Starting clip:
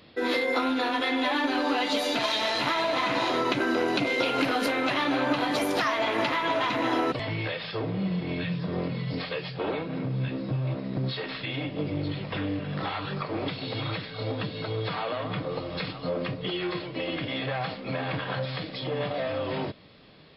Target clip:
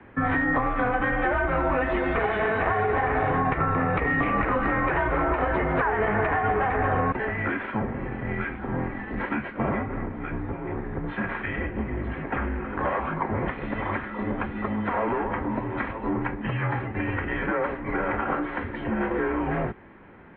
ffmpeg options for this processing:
-filter_complex "[0:a]highpass=f=330:t=q:w=0.5412,highpass=f=330:t=q:w=1.307,lowpass=f=2200:t=q:w=0.5176,lowpass=f=2200:t=q:w=0.7071,lowpass=f=2200:t=q:w=1.932,afreqshift=-230,acrossover=split=200|470[s0][s1][s2];[s0]acompressor=threshold=0.0141:ratio=4[s3];[s1]acompressor=threshold=0.00631:ratio=4[s4];[s2]acompressor=threshold=0.0251:ratio=4[s5];[s3][s4][s5]amix=inputs=3:normalize=0,volume=2.82"

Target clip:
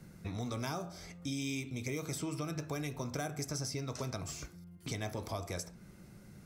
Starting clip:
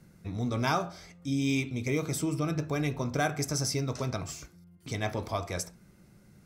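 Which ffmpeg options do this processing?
-filter_complex "[0:a]acrossover=split=620|5900[s0][s1][s2];[s0]acompressor=threshold=0.00794:ratio=4[s3];[s1]acompressor=threshold=0.00398:ratio=4[s4];[s2]acompressor=threshold=0.00316:ratio=4[s5];[s3][s4][s5]amix=inputs=3:normalize=0,volume=1.41"

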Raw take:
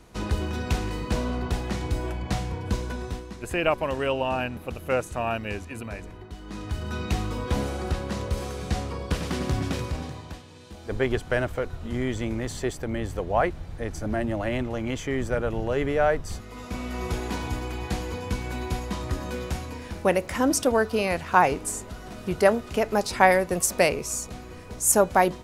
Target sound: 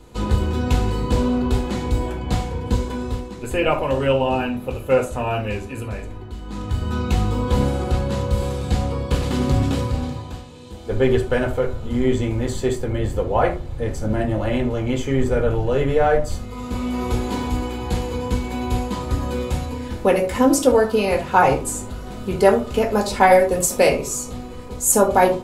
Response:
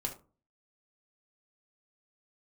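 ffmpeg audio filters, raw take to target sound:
-filter_complex "[1:a]atrim=start_sample=2205[s0];[0:a][s0]afir=irnorm=-1:irlink=0,volume=1.41"

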